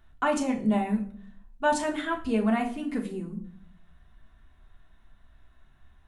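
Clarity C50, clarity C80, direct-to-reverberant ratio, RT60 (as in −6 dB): 11.0 dB, 15.5 dB, −1.5 dB, non-exponential decay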